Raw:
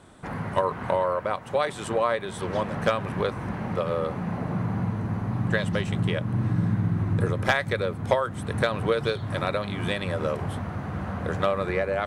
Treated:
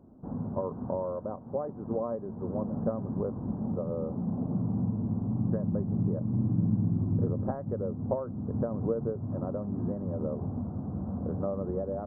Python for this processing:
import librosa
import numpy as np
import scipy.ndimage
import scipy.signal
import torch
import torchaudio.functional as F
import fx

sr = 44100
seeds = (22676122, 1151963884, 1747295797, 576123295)

y = scipy.ndimage.gaussian_filter1d(x, 11.0, mode='constant')
y = fx.peak_eq(y, sr, hz=240.0, db=9.0, octaves=0.53)
y = F.gain(torch.from_numpy(y), -4.5).numpy()